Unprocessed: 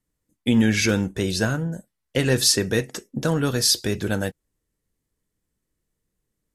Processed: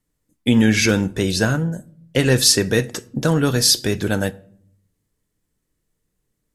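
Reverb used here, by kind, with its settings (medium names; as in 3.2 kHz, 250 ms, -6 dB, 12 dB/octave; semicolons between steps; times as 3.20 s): simulated room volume 1000 m³, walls furnished, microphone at 0.35 m; trim +4 dB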